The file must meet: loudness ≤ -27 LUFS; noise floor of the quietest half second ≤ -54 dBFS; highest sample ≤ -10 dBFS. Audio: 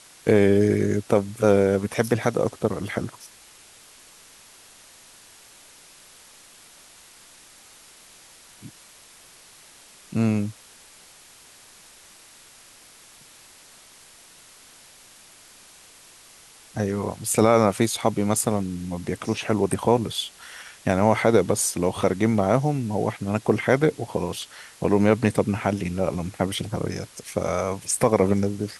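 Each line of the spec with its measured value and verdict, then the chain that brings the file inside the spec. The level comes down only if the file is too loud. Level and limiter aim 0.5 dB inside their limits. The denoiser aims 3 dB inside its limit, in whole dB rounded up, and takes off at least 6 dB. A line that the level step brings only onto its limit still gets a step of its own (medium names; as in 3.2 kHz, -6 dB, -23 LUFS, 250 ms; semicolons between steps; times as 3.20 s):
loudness -23.0 LUFS: fail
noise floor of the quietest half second -50 dBFS: fail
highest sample -4.5 dBFS: fail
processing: trim -4.5 dB; peak limiter -10.5 dBFS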